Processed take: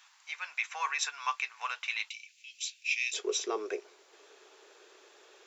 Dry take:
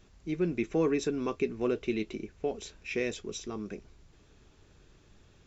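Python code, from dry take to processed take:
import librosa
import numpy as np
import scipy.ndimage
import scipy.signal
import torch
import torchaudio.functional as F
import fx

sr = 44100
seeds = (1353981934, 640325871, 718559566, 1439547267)

y = fx.ellip_highpass(x, sr, hz=fx.steps((0.0, 900.0), (2.08, 2400.0), (3.13, 390.0)), order=4, stop_db=60)
y = y * 10.0 ** (9.0 / 20.0)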